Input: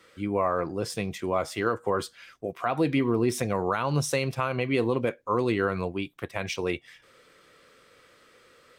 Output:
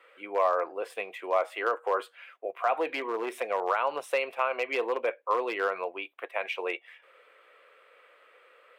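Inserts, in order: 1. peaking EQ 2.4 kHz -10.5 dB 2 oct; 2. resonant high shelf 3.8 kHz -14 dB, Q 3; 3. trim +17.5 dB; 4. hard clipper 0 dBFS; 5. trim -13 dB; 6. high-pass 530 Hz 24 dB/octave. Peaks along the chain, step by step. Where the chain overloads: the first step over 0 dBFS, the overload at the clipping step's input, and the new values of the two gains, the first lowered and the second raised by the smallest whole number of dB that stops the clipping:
-14.5 dBFS, -14.5 dBFS, +3.0 dBFS, 0.0 dBFS, -13.0 dBFS, -13.0 dBFS; step 3, 3.0 dB; step 3 +14.5 dB, step 5 -10 dB

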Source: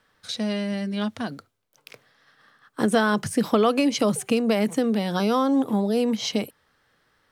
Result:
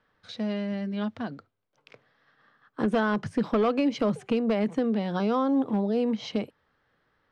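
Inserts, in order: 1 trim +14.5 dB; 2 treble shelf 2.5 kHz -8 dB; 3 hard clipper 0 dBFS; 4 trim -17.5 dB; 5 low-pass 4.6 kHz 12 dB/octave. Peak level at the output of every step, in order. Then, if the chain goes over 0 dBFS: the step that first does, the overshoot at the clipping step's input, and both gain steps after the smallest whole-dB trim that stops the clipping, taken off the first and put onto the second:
+8.0 dBFS, +7.0 dBFS, 0.0 dBFS, -17.5 dBFS, -17.0 dBFS; step 1, 7.0 dB; step 1 +7.5 dB, step 4 -10.5 dB

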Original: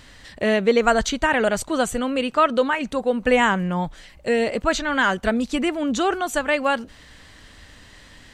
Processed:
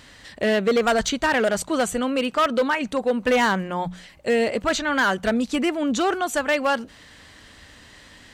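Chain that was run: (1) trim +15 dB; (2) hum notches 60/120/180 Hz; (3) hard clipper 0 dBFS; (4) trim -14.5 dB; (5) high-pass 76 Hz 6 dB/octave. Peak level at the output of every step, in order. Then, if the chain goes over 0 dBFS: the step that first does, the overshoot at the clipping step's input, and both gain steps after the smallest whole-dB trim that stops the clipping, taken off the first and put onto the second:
+10.0 dBFS, +10.0 dBFS, 0.0 dBFS, -14.5 dBFS, -12.0 dBFS; step 1, 10.0 dB; step 1 +5 dB, step 4 -4.5 dB

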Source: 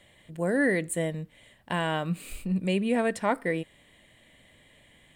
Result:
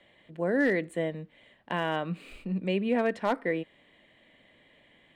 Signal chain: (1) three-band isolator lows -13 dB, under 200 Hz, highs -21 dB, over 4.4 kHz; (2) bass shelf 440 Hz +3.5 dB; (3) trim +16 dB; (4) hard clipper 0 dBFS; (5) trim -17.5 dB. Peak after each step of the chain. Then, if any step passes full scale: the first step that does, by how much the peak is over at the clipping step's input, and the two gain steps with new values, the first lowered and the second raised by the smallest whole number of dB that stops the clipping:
-12.0 dBFS, -11.0 dBFS, +5.0 dBFS, 0.0 dBFS, -17.5 dBFS; step 3, 5.0 dB; step 3 +11 dB, step 5 -12.5 dB

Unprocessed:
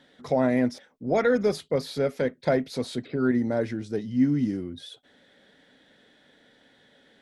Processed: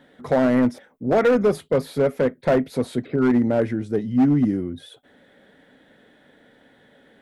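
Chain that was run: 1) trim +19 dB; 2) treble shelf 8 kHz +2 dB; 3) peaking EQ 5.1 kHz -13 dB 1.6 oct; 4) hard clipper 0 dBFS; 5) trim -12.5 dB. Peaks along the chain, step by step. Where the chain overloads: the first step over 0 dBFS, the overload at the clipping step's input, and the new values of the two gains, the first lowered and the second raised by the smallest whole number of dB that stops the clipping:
+8.0 dBFS, +8.0 dBFS, +7.5 dBFS, 0.0 dBFS, -12.5 dBFS; step 1, 7.5 dB; step 1 +11 dB, step 5 -4.5 dB

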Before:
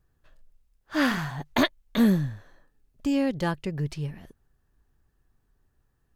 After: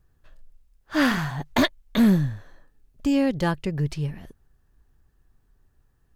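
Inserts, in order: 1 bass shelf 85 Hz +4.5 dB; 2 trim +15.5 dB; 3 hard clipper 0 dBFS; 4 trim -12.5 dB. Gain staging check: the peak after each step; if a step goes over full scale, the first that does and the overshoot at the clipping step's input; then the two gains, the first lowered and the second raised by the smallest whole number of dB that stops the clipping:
-7.0 dBFS, +8.5 dBFS, 0.0 dBFS, -12.5 dBFS; step 2, 8.5 dB; step 2 +6.5 dB, step 4 -3.5 dB

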